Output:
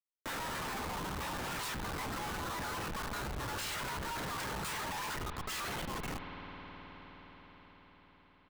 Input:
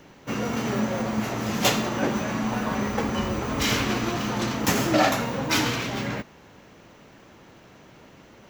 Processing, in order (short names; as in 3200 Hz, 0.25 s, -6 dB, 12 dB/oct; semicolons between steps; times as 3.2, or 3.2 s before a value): steep high-pass 620 Hz 96 dB/oct; reverb removal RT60 1.8 s; LPF 9300 Hz 12 dB/oct; bell 2600 Hz -3 dB 1.4 oct; pitch shift +5 st; Schmitt trigger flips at -37 dBFS; spring tank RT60 3.3 s, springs 52 ms, chirp 35 ms, DRR 10 dB; fast leveller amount 50%; gain -5 dB